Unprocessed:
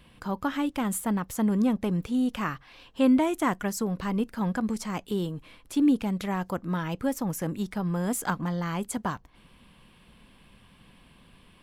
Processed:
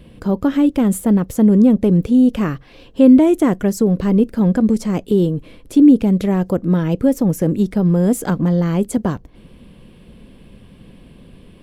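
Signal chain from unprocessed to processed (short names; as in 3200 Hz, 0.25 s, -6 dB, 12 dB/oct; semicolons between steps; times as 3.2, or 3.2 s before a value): resonant low shelf 680 Hz +9.5 dB, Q 1.5; in parallel at -1.5 dB: limiter -12 dBFS, peak gain reduction 9.5 dB; on the sum: gain -1 dB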